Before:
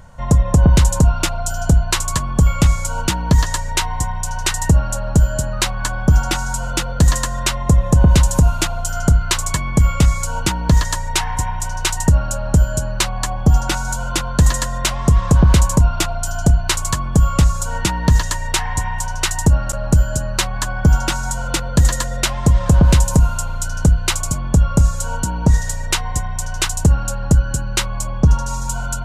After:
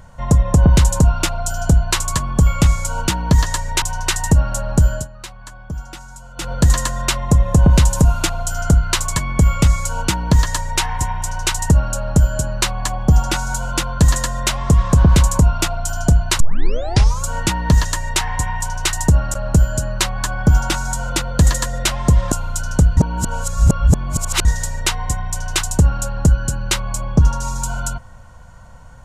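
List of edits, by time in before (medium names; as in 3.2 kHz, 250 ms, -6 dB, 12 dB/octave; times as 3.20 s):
3.82–4.20 s: delete
5.31–6.89 s: dip -15.5 dB, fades 0.15 s
16.78 s: tape start 0.83 s
22.70–23.38 s: delete
24.03–25.51 s: reverse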